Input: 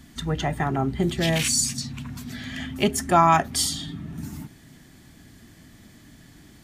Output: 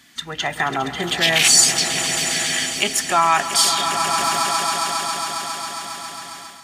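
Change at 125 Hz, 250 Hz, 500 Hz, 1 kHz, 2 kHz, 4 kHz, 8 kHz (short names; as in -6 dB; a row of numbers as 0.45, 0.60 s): -7.0, -4.0, +1.0, +5.0, +11.0, +12.0, +10.5 dB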